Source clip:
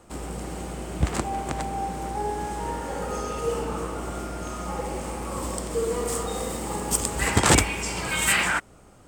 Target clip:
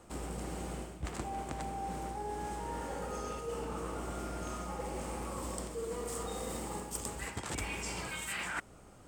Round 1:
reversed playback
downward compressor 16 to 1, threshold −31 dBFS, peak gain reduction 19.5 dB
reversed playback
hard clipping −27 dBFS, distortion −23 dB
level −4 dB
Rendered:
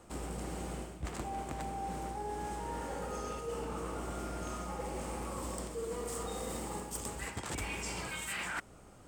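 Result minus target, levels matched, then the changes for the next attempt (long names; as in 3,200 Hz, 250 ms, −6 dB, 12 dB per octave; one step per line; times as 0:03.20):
hard clipping: distortion +14 dB
change: hard clipping −19.5 dBFS, distortion −38 dB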